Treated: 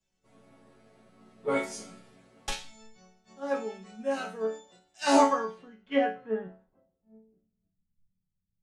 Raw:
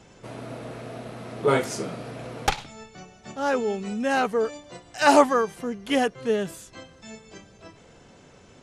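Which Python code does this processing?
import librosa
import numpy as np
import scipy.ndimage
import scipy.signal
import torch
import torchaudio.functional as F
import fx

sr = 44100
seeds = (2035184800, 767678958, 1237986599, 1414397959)

y = fx.filter_sweep_lowpass(x, sr, from_hz=9500.0, to_hz=140.0, start_s=5.01, end_s=7.91, q=1.3)
y = fx.resonator_bank(y, sr, root=54, chord='minor', decay_s=0.39)
y = fx.band_widen(y, sr, depth_pct=70)
y = y * 10.0 ** (6.5 / 20.0)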